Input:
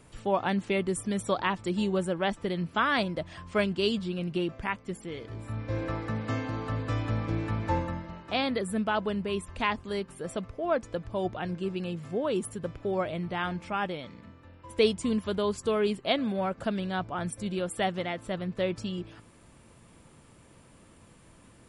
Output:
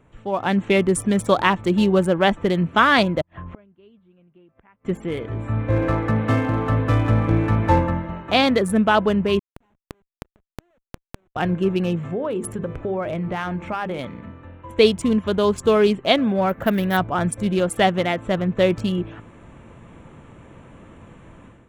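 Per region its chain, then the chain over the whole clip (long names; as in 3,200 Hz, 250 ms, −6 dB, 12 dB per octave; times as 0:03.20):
0:03.21–0:04.85: gate with flip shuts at −31 dBFS, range −35 dB + head-to-tape spacing loss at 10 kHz 31 dB + one half of a high-frequency compander encoder only
0:09.39–0:11.36: parametric band 1,400 Hz −4.5 dB 1.9 octaves + comparator with hysteresis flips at −31.5 dBFS + gate with flip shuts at −34 dBFS, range −41 dB
0:12.10–0:13.99: mains-hum notches 50/100/150/200/250/300/350/400/450/500 Hz + downward compressor 4 to 1, threshold −34 dBFS + parametric band 3,200 Hz −2.5 dB 0.33 octaves
0:16.49–0:16.97: parametric band 1,900 Hz +7.5 dB 0.37 octaves + bad sample-rate conversion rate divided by 3×, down none, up hold
whole clip: adaptive Wiener filter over 9 samples; automatic gain control gain up to 12 dB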